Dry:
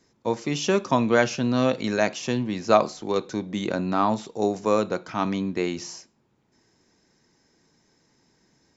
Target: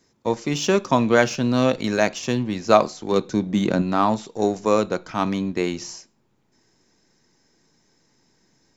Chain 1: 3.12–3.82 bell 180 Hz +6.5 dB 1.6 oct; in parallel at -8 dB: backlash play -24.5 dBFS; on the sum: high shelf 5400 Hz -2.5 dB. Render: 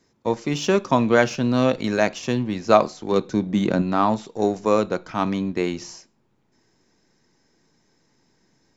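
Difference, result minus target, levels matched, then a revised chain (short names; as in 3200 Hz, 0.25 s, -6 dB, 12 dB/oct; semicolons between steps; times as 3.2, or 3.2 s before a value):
8000 Hz band -3.5 dB
3.12–3.82 bell 180 Hz +6.5 dB 1.6 oct; in parallel at -8 dB: backlash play -24.5 dBFS; on the sum: high shelf 5400 Hz +4 dB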